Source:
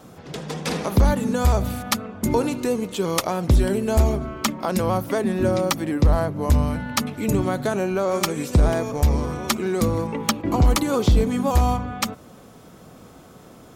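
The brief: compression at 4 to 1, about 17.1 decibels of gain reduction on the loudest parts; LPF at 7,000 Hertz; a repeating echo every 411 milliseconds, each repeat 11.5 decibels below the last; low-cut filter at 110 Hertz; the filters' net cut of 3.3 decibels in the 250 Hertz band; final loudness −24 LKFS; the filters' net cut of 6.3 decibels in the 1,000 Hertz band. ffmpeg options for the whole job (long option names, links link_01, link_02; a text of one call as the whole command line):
ffmpeg -i in.wav -af "highpass=110,lowpass=7000,equalizer=frequency=250:width_type=o:gain=-3.5,equalizer=frequency=1000:width_type=o:gain=-8.5,acompressor=threshold=-38dB:ratio=4,aecho=1:1:411|822|1233:0.266|0.0718|0.0194,volume=15.5dB" out.wav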